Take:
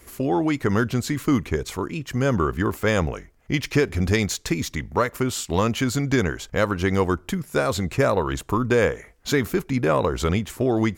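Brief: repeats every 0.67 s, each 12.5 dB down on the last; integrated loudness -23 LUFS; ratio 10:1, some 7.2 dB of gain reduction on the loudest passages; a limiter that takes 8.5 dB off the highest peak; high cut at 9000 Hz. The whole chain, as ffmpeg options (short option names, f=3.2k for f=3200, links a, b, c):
-af "lowpass=9k,acompressor=threshold=-22dB:ratio=10,alimiter=limit=-20.5dB:level=0:latency=1,aecho=1:1:670|1340|2010:0.237|0.0569|0.0137,volume=8.5dB"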